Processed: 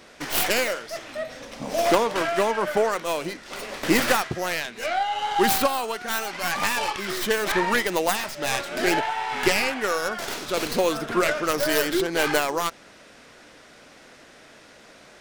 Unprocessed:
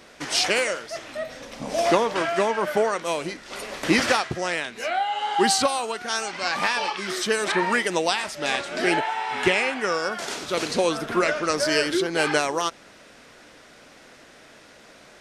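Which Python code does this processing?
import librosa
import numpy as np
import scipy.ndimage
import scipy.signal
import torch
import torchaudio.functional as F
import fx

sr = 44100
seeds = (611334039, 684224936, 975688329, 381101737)

y = fx.tracing_dist(x, sr, depth_ms=0.3)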